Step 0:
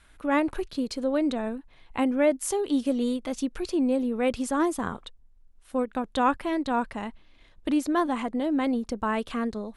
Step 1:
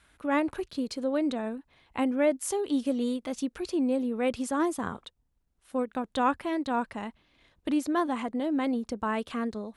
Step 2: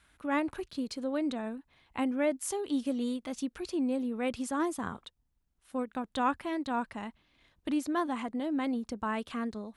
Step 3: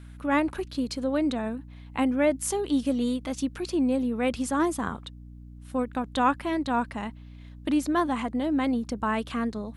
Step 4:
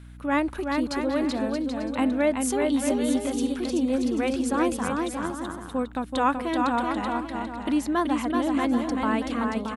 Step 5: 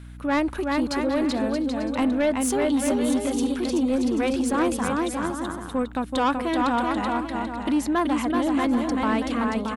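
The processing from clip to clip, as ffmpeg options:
-af "highpass=59,volume=-2.5dB"
-af "equalizer=f=490:w=1.5:g=-3.5,volume=-2.5dB"
-af "aeval=exprs='val(0)+0.00355*(sin(2*PI*60*n/s)+sin(2*PI*2*60*n/s)/2+sin(2*PI*3*60*n/s)/3+sin(2*PI*4*60*n/s)/4+sin(2*PI*5*60*n/s)/5)':c=same,volume=6dB"
-af "aecho=1:1:380|627|787.6|891.9|959.7:0.631|0.398|0.251|0.158|0.1"
-af "asoftclip=type=tanh:threshold=-19dB,volume=3.5dB"

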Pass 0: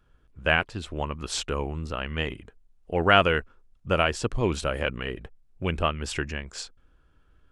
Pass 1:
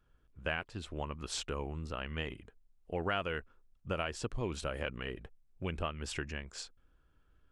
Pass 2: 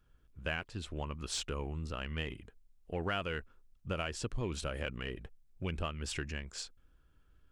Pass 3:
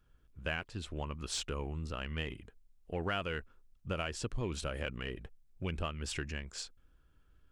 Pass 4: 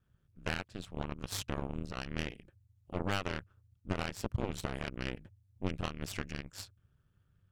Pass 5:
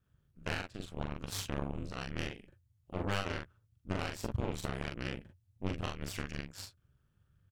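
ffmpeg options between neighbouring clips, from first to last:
-af "acompressor=threshold=-25dB:ratio=3,volume=-7.5dB"
-filter_complex "[0:a]equalizer=f=770:t=o:w=2.8:g=-4,asplit=2[a][b];[b]asoftclip=type=tanh:threshold=-37.5dB,volume=-8.5dB[c];[a][c]amix=inputs=2:normalize=0"
-af anull
-af "aeval=exprs='0.0891*(cos(1*acos(clip(val(0)/0.0891,-1,1)))-cos(1*PI/2))+0.0224*(cos(4*acos(clip(val(0)/0.0891,-1,1)))-cos(4*PI/2))+0.00501*(cos(7*acos(clip(val(0)/0.0891,-1,1)))-cos(7*PI/2))+0.00282*(cos(8*acos(clip(val(0)/0.0891,-1,1)))-cos(8*PI/2))':c=same,aeval=exprs='val(0)*sin(2*PI*97*n/s)':c=same,volume=1.5dB"
-af "aecho=1:1:42|56:0.668|0.168,volume=-2dB"

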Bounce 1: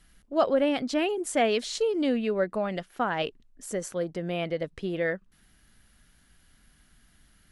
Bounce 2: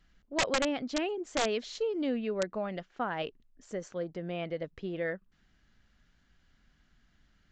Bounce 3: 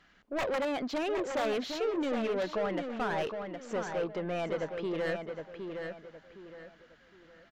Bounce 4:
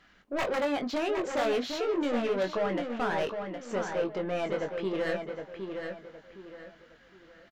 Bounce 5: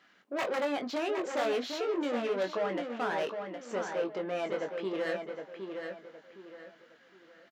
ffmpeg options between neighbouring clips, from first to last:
-af "highshelf=f=6.2k:g=-10,aresample=16000,aeval=exprs='(mod(5.96*val(0)+1,2)-1)/5.96':c=same,aresample=44100,volume=-5.5dB"
-filter_complex "[0:a]asplit=2[a][b];[b]highpass=f=720:p=1,volume=27dB,asoftclip=type=tanh:threshold=-17dB[c];[a][c]amix=inputs=2:normalize=0,lowpass=f=1.7k:p=1,volume=-6dB,asplit=2[d][e];[e]adelay=764,lowpass=f=4.4k:p=1,volume=-6dB,asplit=2[f][g];[g]adelay=764,lowpass=f=4.4k:p=1,volume=0.33,asplit=2[h][i];[i]adelay=764,lowpass=f=4.4k:p=1,volume=0.33,asplit=2[j][k];[k]adelay=764,lowpass=f=4.4k:p=1,volume=0.33[l];[f][h][j][l]amix=inputs=4:normalize=0[m];[d][m]amix=inputs=2:normalize=0,volume=-7dB"
-filter_complex "[0:a]asplit=2[a][b];[b]adelay=21,volume=-6dB[c];[a][c]amix=inputs=2:normalize=0,volume=1.5dB"
-af "highpass=230,volume=-2dB"

